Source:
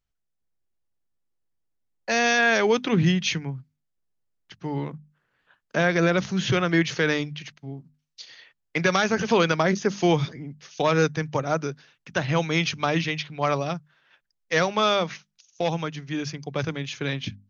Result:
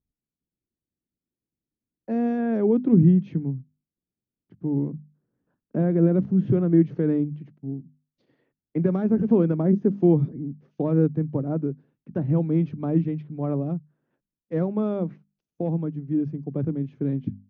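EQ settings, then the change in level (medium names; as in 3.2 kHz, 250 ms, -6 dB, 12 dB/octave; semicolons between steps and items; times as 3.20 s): band-pass filter 270 Hz, Q 1.7; tilt EQ -4 dB/octave; 0.0 dB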